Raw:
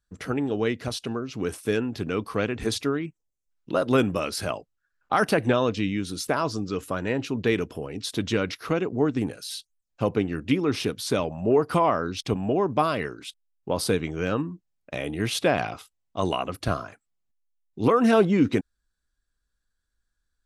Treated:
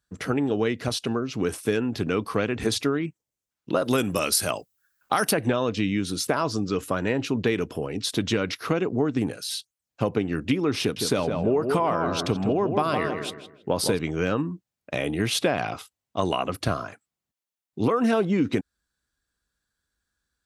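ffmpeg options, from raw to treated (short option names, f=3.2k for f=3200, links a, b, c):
-filter_complex "[0:a]asplit=3[a][b][c];[a]afade=t=out:st=3.84:d=0.02[d];[b]aemphasis=mode=production:type=75fm,afade=t=in:st=3.84:d=0.02,afade=t=out:st=5.31:d=0.02[e];[c]afade=t=in:st=5.31:d=0.02[f];[d][e][f]amix=inputs=3:normalize=0,asettb=1/sr,asplit=3[g][h][i];[g]atrim=end=10.804[j];[h]atrim=start=10.8:end=13.99,asetpts=PTS-STARTPTS,afade=t=in:d=0.004:c=qsin,afade=t=out:st=3.186:d=0.004:c=qsin,asplit=2[k][l];[l]adelay=161,lowpass=f=2k:p=1,volume=-7dB,asplit=2[m][n];[n]adelay=161,lowpass=f=2k:p=1,volume=0.35,asplit=2[o][p];[p]adelay=161,lowpass=f=2k:p=1,volume=0.35,asplit=2[q][r];[r]adelay=161,lowpass=f=2k:p=1,volume=0.35[s];[k][m][o][q][s]amix=inputs=5:normalize=0,atrim=end_sample=140679[t];[i]atrim=start=13.986[u];[j][t]acrossfade=d=0.004:c1=hsin:c2=qsin[v];[v][u]acrossfade=d=0.004:c1=qsin:c2=hsin,acompressor=threshold=-23dB:ratio=6,highpass=74,volume=4dB"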